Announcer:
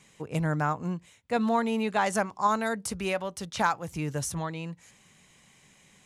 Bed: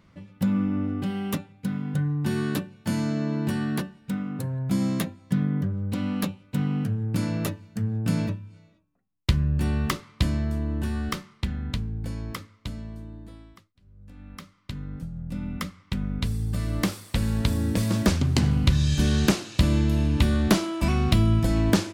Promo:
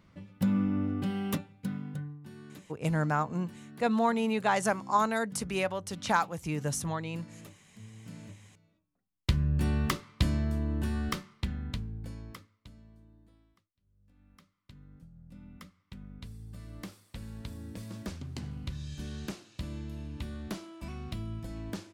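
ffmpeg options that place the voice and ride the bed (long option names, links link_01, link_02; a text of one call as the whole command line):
ffmpeg -i stem1.wav -i stem2.wav -filter_complex "[0:a]adelay=2500,volume=-1dB[link_01];[1:a]volume=15dB,afade=type=out:start_time=1.46:duration=0.74:silence=0.11885,afade=type=in:start_time=8.22:duration=1.36:silence=0.11885,afade=type=out:start_time=11.17:duration=1.51:silence=0.188365[link_02];[link_01][link_02]amix=inputs=2:normalize=0" out.wav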